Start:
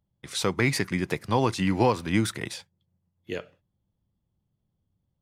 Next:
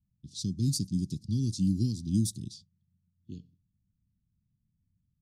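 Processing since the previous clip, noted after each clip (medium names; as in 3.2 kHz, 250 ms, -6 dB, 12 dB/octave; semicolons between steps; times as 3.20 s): inverse Chebyshev band-stop 530–2300 Hz, stop band 50 dB; level-controlled noise filter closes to 2.4 kHz, open at -23 dBFS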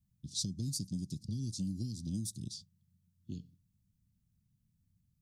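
tone controls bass +10 dB, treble +6 dB; compression 4:1, threshold -30 dBFS, peak gain reduction 14 dB; bass shelf 220 Hz -10 dB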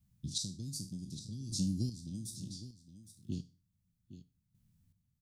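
spectral sustain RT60 0.34 s; square tremolo 0.66 Hz, depth 65%, duty 25%; delay 813 ms -13.5 dB; trim +3.5 dB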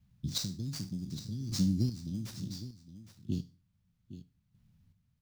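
median filter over 5 samples; trim +5 dB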